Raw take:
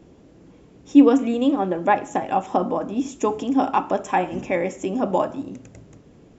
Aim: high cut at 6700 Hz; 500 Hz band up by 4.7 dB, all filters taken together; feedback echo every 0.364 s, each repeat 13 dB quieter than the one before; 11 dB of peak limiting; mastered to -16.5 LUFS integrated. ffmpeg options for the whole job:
-af "lowpass=6.7k,equalizer=f=500:t=o:g=5.5,alimiter=limit=-12dB:level=0:latency=1,aecho=1:1:364|728|1092:0.224|0.0493|0.0108,volume=6.5dB"

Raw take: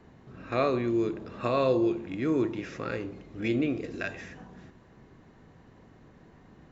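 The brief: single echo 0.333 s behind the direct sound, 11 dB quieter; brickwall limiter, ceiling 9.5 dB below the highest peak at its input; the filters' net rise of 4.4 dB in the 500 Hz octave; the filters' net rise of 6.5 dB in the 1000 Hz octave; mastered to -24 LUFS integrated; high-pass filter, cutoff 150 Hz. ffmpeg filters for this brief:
-af "highpass=150,equalizer=f=500:t=o:g=4,equalizer=f=1k:t=o:g=7,alimiter=limit=-18.5dB:level=0:latency=1,aecho=1:1:333:0.282,volume=5.5dB"

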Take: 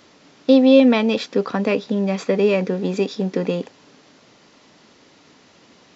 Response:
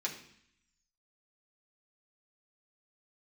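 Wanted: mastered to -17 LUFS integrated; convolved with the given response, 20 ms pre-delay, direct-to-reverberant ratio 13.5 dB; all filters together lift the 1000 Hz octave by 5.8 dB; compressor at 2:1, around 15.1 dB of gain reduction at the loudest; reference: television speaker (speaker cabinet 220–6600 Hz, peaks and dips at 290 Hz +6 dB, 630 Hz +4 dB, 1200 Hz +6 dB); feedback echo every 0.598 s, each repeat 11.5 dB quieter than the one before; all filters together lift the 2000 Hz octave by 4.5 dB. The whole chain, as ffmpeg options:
-filter_complex "[0:a]equalizer=f=1k:t=o:g=3,equalizer=f=2k:t=o:g=5,acompressor=threshold=-36dB:ratio=2,aecho=1:1:598|1196|1794:0.266|0.0718|0.0194,asplit=2[a][b];[1:a]atrim=start_sample=2205,adelay=20[c];[b][c]afir=irnorm=-1:irlink=0,volume=-16dB[d];[a][d]amix=inputs=2:normalize=0,highpass=f=220:w=0.5412,highpass=f=220:w=1.3066,equalizer=f=290:t=q:w=4:g=6,equalizer=f=630:t=q:w=4:g=4,equalizer=f=1.2k:t=q:w=4:g=6,lowpass=f=6.6k:w=0.5412,lowpass=f=6.6k:w=1.3066,volume=12dB"

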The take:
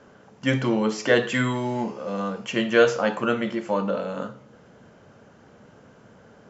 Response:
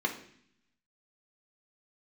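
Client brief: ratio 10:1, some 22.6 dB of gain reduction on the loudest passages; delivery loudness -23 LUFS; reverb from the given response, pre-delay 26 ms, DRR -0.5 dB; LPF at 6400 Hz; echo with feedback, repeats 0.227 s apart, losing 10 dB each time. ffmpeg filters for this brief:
-filter_complex "[0:a]lowpass=6.4k,acompressor=threshold=-35dB:ratio=10,aecho=1:1:227|454|681|908:0.316|0.101|0.0324|0.0104,asplit=2[a][b];[1:a]atrim=start_sample=2205,adelay=26[c];[b][c]afir=irnorm=-1:irlink=0,volume=-7dB[d];[a][d]amix=inputs=2:normalize=0,volume=12dB"

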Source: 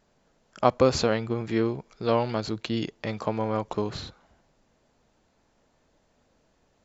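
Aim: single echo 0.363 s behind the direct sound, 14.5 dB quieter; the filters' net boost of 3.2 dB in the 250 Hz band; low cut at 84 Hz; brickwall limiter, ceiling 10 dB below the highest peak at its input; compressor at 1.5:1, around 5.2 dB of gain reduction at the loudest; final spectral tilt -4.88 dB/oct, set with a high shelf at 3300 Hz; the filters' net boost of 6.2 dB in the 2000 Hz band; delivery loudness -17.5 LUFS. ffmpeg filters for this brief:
-af "highpass=84,equalizer=f=250:t=o:g=4,equalizer=f=2k:t=o:g=9,highshelf=f=3.3k:g=-4,acompressor=threshold=-26dB:ratio=1.5,alimiter=limit=-16.5dB:level=0:latency=1,aecho=1:1:363:0.188,volume=13.5dB"

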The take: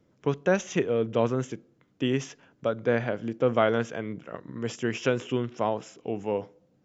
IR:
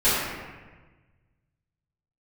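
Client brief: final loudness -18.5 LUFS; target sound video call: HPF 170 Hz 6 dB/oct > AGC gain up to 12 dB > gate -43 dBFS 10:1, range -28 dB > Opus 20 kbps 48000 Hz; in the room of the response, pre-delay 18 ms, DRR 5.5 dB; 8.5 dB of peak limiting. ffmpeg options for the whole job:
-filter_complex "[0:a]alimiter=limit=-16dB:level=0:latency=1,asplit=2[a][b];[1:a]atrim=start_sample=2205,adelay=18[c];[b][c]afir=irnorm=-1:irlink=0,volume=-23.5dB[d];[a][d]amix=inputs=2:normalize=0,highpass=f=170:p=1,dynaudnorm=m=12dB,agate=range=-28dB:threshold=-43dB:ratio=10,volume=12dB" -ar 48000 -c:a libopus -b:a 20k

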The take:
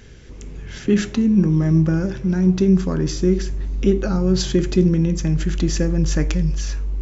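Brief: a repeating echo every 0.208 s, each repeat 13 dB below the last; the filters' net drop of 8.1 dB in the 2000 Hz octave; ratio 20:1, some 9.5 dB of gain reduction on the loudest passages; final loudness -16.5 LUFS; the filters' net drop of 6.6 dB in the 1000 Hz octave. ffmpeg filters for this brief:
-af "equalizer=f=1k:t=o:g=-6.5,equalizer=f=2k:t=o:g=-8.5,acompressor=threshold=-20dB:ratio=20,aecho=1:1:208|416|624:0.224|0.0493|0.0108,volume=9dB"

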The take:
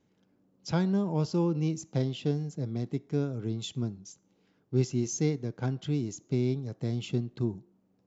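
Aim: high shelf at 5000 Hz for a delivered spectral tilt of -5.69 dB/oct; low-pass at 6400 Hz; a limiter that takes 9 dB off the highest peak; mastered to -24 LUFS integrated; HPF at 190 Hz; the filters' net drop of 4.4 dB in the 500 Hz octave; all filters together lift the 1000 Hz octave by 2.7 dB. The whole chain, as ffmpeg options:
-af "highpass=190,lowpass=6.4k,equalizer=f=500:t=o:g=-7,equalizer=f=1k:t=o:g=6,highshelf=f=5k:g=-3.5,volume=14.5dB,alimiter=limit=-13dB:level=0:latency=1"

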